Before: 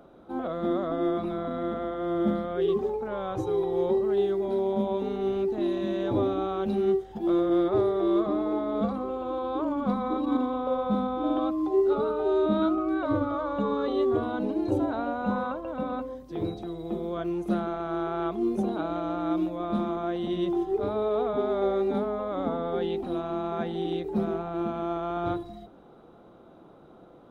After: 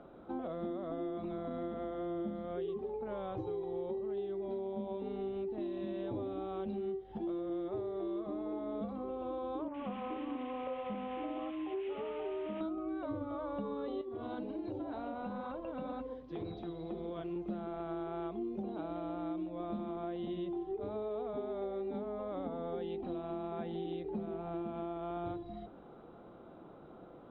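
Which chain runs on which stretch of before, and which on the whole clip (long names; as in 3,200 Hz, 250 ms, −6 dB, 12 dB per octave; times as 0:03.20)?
0:09.68–0:12.61: variable-slope delta modulation 16 kbit/s + low-shelf EQ 420 Hz −9.5 dB + multiband delay without the direct sound lows, highs 60 ms, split 1,600 Hz
0:14.01–0:17.36: high-shelf EQ 3,300 Hz +8 dB + downward compressor 4 to 1, threshold −27 dBFS + flanger 2 Hz, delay 0.4 ms, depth 7.8 ms, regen +64%
whole clip: low-pass filter 3,500 Hz 24 dB per octave; dynamic equaliser 1,400 Hz, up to −6 dB, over −49 dBFS, Q 1.6; downward compressor, threshold −35 dBFS; level −1.5 dB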